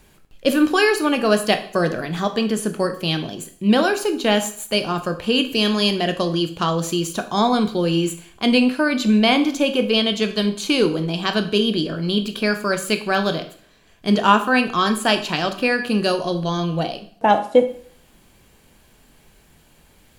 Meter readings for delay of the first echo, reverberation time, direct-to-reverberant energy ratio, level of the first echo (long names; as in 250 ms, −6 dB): no echo audible, 0.55 s, 7.0 dB, no echo audible